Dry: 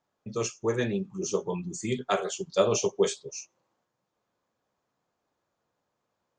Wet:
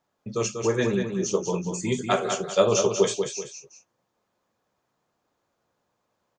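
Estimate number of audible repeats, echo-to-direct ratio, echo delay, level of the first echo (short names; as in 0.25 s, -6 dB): 2, -6.0 dB, 0.191 s, -6.5 dB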